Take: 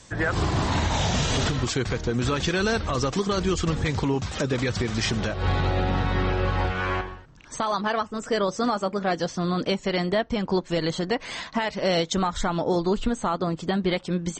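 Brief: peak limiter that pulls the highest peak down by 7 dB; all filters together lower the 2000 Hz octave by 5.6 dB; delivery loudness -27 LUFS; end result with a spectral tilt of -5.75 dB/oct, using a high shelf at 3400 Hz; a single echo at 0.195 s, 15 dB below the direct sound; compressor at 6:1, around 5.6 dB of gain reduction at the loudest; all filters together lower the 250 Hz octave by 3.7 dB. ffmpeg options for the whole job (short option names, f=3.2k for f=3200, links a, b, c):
-af "equalizer=f=250:t=o:g=-5.5,equalizer=f=2k:t=o:g=-5,highshelf=f=3.4k:g=-8,acompressor=threshold=-27dB:ratio=6,alimiter=level_in=1dB:limit=-24dB:level=0:latency=1,volume=-1dB,aecho=1:1:195:0.178,volume=7.5dB"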